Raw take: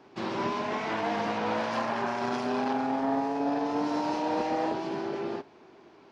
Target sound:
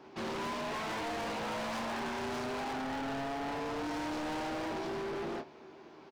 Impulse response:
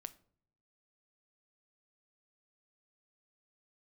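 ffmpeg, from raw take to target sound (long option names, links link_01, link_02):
-af "aecho=1:1:13|26:0.335|0.398,volume=35.5dB,asoftclip=hard,volume=-35.5dB"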